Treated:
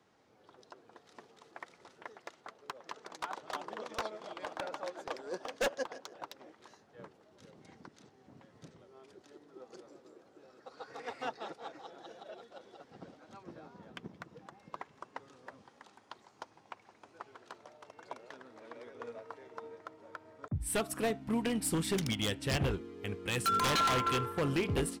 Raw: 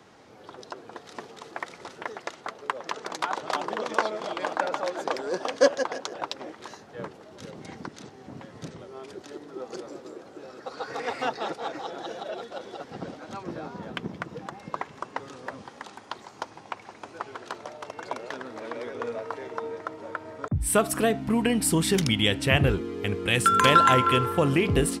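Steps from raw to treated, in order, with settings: wavefolder -16.5 dBFS; upward expansion 1.5:1, over -37 dBFS; trim -7 dB

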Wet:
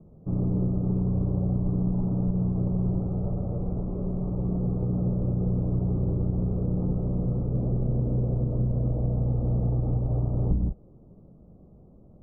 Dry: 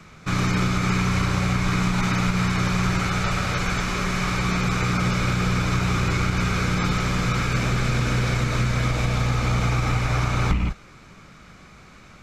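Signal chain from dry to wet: inverse Chebyshev low-pass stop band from 1.6 kHz, stop band 50 dB; trim -2.5 dB

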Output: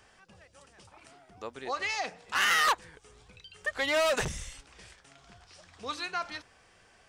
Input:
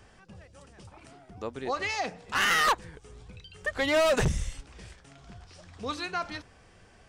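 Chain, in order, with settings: bass shelf 420 Hz -11.5 dB

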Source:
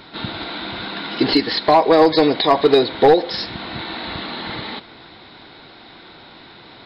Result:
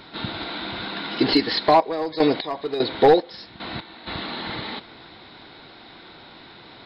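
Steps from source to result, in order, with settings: 1.60–4.06 s: trance gate ".x..xx..x." 75 bpm -12 dB; trim -2.5 dB

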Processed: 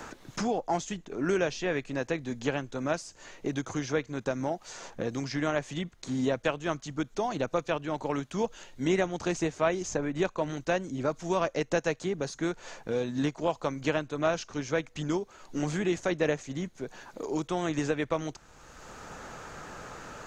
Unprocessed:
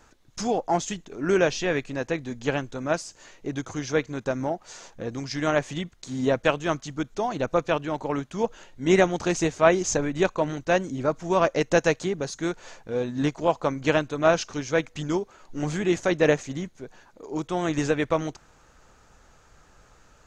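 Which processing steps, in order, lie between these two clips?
three bands compressed up and down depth 70%; trim -5.5 dB

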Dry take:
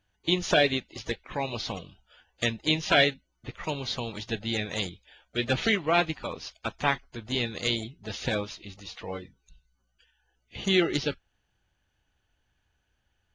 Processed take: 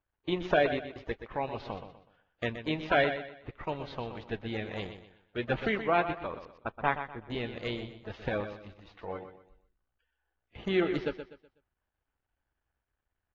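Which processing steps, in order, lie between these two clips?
companding laws mixed up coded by A; low-pass 1.6 kHz 12 dB/octave; peaking EQ 170 Hz -5 dB 1.9 oct; 6.45–7.30 s: level-controlled noise filter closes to 320 Hz, open at -28 dBFS; feedback delay 124 ms, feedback 33%, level -10 dB

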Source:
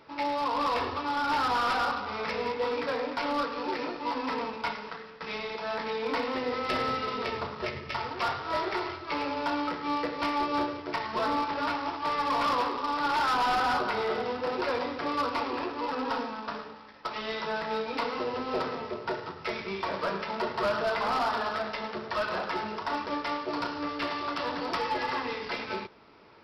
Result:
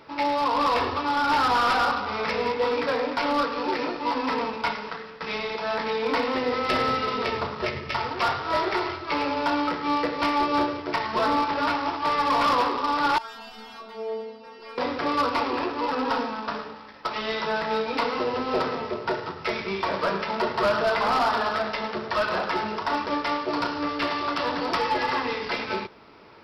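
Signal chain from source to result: 13.18–14.78 s: inharmonic resonator 220 Hz, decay 0.53 s, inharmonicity 0.002; trim +5.5 dB

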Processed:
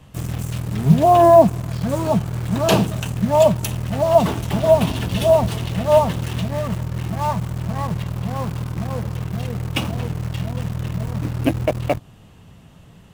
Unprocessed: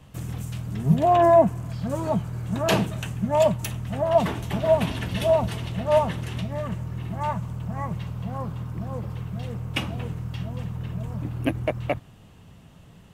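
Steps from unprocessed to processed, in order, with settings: dynamic bell 1.9 kHz, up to -7 dB, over -44 dBFS, Q 1.7; in parallel at -9 dB: bit crusher 5-bit; on the sum: trim +3.5 dB

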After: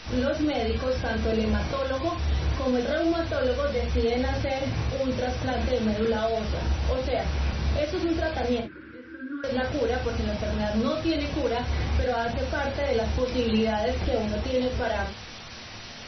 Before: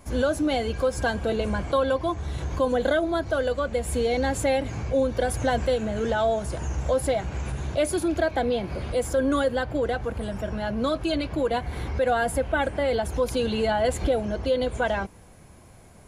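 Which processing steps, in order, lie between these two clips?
peak limiter -21 dBFS, peak gain reduction 9 dB; added noise white -39 dBFS; 8.60–9.44 s: two resonant band-passes 690 Hz, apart 2.3 oct; reverberation, pre-delay 6 ms, DRR 1 dB; MP3 24 kbps 24 kHz

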